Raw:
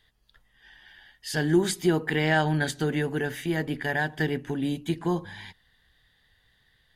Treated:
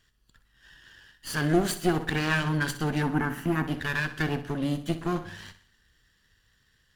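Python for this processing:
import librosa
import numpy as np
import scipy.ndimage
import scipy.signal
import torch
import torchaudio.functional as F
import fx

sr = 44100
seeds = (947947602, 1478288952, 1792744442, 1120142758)

y = fx.lower_of_two(x, sr, delay_ms=0.69)
y = fx.graphic_eq(y, sr, hz=(250, 500, 1000, 4000, 8000), db=(9, -7, 8, -11, -3), at=(3.03, 3.67))
y = fx.echo_feedback(y, sr, ms=62, feedback_pct=47, wet_db=-13)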